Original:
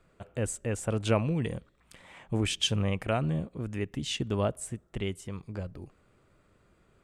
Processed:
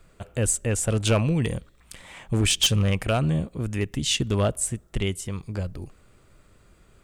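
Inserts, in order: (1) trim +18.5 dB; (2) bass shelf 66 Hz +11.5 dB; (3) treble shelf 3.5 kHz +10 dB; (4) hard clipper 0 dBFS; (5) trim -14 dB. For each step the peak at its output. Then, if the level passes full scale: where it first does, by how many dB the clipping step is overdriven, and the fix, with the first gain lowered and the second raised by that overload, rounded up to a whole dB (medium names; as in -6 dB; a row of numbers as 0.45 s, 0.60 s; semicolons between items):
+6.0 dBFS, +7.5 dBFS, +9.5 dBFS, 0.0 dBFS, -14.0 dBFS; step 1, 9.5 dB; step 1 +8.5 dB, step 5 -4 dB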